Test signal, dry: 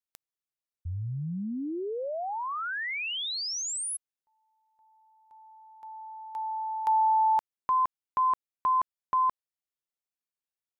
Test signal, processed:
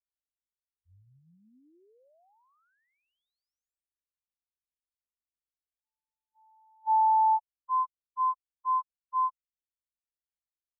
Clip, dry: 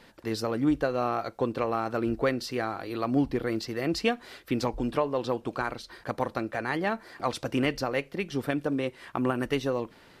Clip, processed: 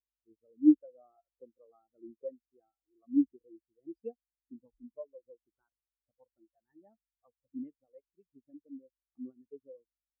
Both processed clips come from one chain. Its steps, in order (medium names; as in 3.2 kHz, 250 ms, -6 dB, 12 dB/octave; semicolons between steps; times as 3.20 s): hum 50 Hz, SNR 13 dB; spectral contrast expander 4:1